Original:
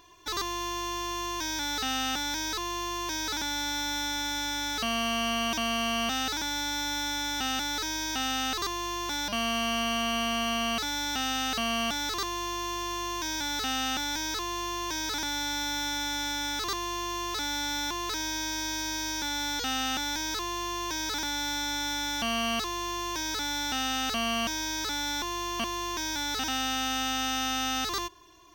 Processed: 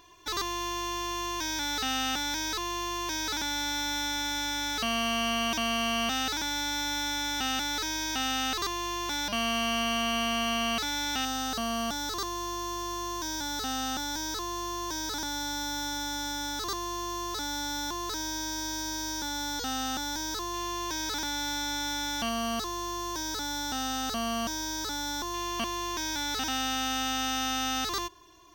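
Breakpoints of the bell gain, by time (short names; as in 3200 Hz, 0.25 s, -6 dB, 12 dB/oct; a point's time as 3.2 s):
bell 2400 Hz 0.76 oct
+0.5 dB
from 11.25 s -11.5 dB
from 20.54 s -4.5 dB
from 22.29 s -11.5 dB
from 25.34 s -2 dB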